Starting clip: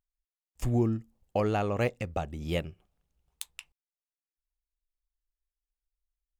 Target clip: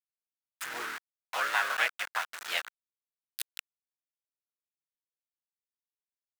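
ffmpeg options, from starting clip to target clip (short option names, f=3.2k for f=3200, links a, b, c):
-filter_complex "[0:a]asplit=3[a][b][c];[b]asetrate=52444,aresample=44100,atempo=0.840896,volume=-8dB[d];[c]asetrate=58866,aresample=44100,atempo=0.749154,volume=-4dB[e];[a][d][e]amix=inputs=3:normalize=0,aeval=exprs='val(0)*gte(abs(val(0)),0.0237)':c=same,highpass=f=1.5k:t=q:w=2.9,volume=1.5dB"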